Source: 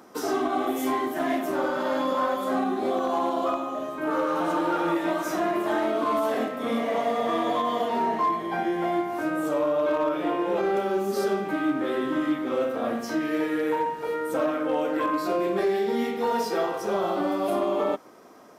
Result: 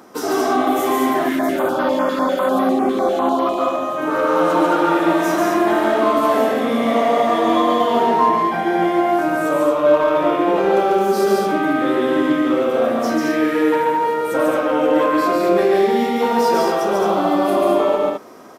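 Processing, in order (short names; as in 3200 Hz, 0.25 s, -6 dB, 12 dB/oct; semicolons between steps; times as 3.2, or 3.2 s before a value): loudspeakers at several distances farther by 49 m -2 dB, 74 m -4 dB; 1.29–3.58 stepped notch 10 Hz 740–7600 Hz; gain +6 dB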